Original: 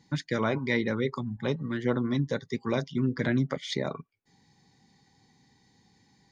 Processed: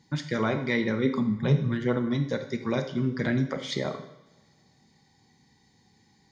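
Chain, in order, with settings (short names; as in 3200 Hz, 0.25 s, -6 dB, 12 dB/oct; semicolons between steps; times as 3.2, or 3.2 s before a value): 1.03–1.84 bell 270 Hz -> 96 Hz +13.5 dB 0.5 oct; two-slope reverb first 0.75 s, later 2.2 s, from -21 dB, DRR 6 dB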